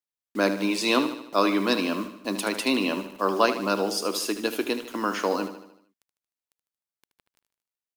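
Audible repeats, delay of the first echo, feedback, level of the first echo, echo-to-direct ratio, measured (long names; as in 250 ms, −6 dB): 5, 76 ms, 52%, −11.0 dB, −9.5 dB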